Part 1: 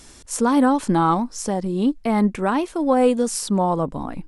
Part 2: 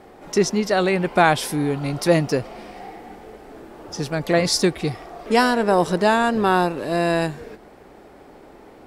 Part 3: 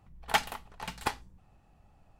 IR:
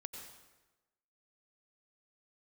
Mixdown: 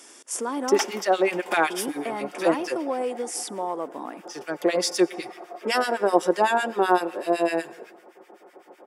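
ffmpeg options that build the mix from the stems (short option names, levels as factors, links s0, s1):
-filter_complex "[0:a]acompressor=threshold=0.0447:ratio=2.5,volume=0.891,asplit=3[s0][s1][s2];[s0]atrim=end=0.79,asetpts=PTS-STARTPTS,afade=t=out:st=0.786:d=0.004:c=hsin[s3];[s1]atrim=start=0.79:end=1.7,asetpts=PTS-STARTPTS,volume=0[s4];[s2]atrim=start=1.7,asetpts=PTS-STARTPTS,afade=t=in:d=0.004:c=hsin[s5];[s3][s4][s5]concat=n=3:v=0:a=1,asplit=2[s6][s7];[s7]volume=0.126[s8];[1:a]acrossover=split=1400[s9][s10];[s9]aeval=exprs='val(0)*(1-1/2+1/2*cos(2*PI*7.9*n/s))':c=same[s11];[s10]aeval=exprs='val(0)*(1-1/2-1/2*cos(2*PI*7.9*n/s))':c=same[s12];[s11][s12]amix=inputs=2:normalize=0,aecho=1:1:5.6:0.49,adelay=350,volume=0.944,asplit=2[s13][s14];[s14]volume=0.237[s15];[2:a]adelay=450,volume=0.562,asplit=2[s16][s17];[s17]volume=0.562[s18];[3:a]atrim=start_sample=2205[s19];[s8][s15][s18]amix=inputs=3:normalize=0[s20];[s20][s19]afir=irnorm=-1:irlink=0[s21];[s6][s13][s16][s21]amix=inputs=4:normalize=0,highpass=f=300:w=0.5412,highpass=f=300:w=1.3066,bandreject=f=4100:w=5.2"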